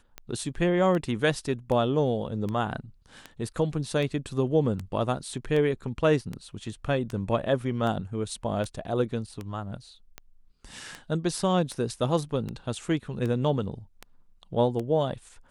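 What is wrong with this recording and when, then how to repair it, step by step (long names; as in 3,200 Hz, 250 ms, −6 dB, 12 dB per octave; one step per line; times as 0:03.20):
scratch tick 78 rpm −21 dBFS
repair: click removal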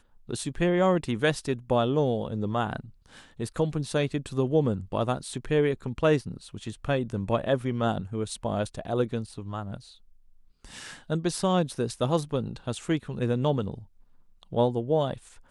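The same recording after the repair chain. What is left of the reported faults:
none of them is left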